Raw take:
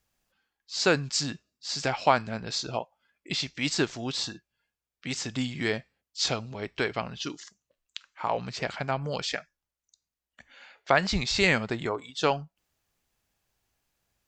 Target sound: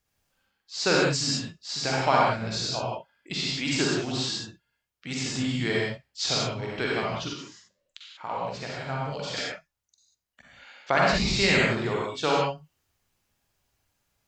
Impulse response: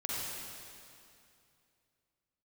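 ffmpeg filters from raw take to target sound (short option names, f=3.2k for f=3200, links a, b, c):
-filter_complex "[1:a]atrim=start_sample=2205,afade=t=out:st=0.25:d=0.01,atrim=end_sample=11466[a];[0:a][a]afir=irnorm=-1:irlink=0,asettb=1/sr,asplit=3[b][c][d];[b]atrim=end=7.334[e];[c]atrim=start=7.33:end=9.37,asetpts=PTS-STARTPTS,afade=t=in:d=0.004:c=qsin,afade=t=out:st=2.036:d=0.004:c=qsin,flanger=delay=5.4:depth=5.6:regen=88:speed=1.3:shape=triangular[f];[d]atrim=start=9.366[g];[e][f]acrossfade=d=0.004:c1=hsin:c2=qsin[h];[h][g]acrossfade=d=0.004:c1=qsin:c2=hsin"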